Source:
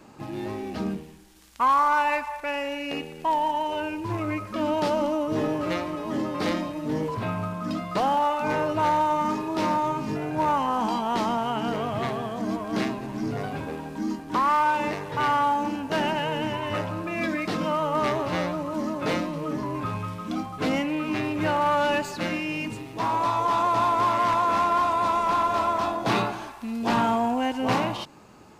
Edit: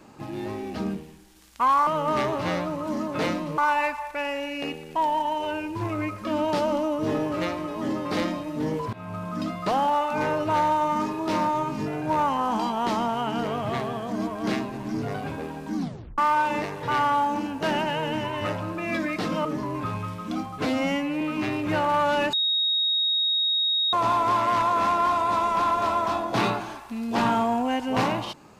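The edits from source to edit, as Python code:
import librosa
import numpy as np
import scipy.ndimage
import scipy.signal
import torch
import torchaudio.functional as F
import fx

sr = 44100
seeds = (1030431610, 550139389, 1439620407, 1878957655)

y = fx.edit(x, sr, fx.fade_in_from(start_s=7.22, length_s=0.36, floor_db=-20.0),
    fx.tape_stop(start_s=14.05, length_s=0.42),
    fx.move(start_s=17.74, length_s=1.71, to_s=1.87),
    fx.stretch_span(start_s=20.65, length_s=0.28, factor=2.0),
    fx.bleep(start_s=22.05, length_s=1.6, hz=3760.0, db=-20.5), tone=tone)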